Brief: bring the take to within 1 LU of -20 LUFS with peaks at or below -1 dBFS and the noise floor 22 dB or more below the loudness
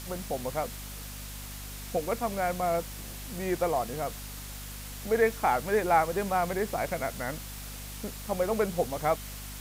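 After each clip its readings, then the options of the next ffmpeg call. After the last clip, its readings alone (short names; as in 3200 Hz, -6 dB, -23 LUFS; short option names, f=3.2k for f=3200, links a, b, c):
hum 50 Hz; harmonics up to 250 Hz; hum level -41 dBFS; noise floor -41 dBFS; noise floor target -53 dBFS; loudness -31.0 LUFS; peak -11.5 dBFS; loudness target -20.0 LUFS
-> -af "bandreject=f=50:t=h:w=4,bandreject=f=100:t=h:w=4,bandreject=f=150:t=h:w=4,bandreject=f=200:t=h:w=4,bandreject=f=250:t=h:w=4"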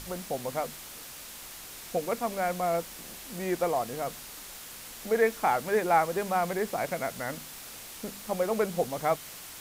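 hum none; noise floor -45 dBFS; noise floor target -52 dBFS
-> -af "afftdn=nr=7:nf=-45"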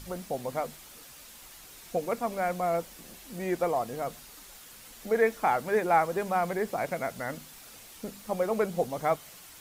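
noise floor -50 dBFS; noise floor target -52 dBFS
-> -af "afftdn=nr=6:nf=-50"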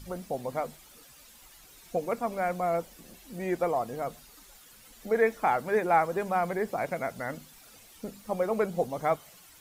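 noise floor -54 dBFS; loudness -30.0 LUFS; peak -11.5 dBFS; loudness target -20.0 LUFS
-> -af "volume=10dB"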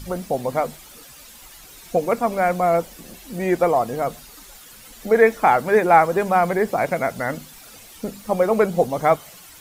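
loudness -20.0 LUFS; peak -1.5 dBFS; noise floor -44 dBFS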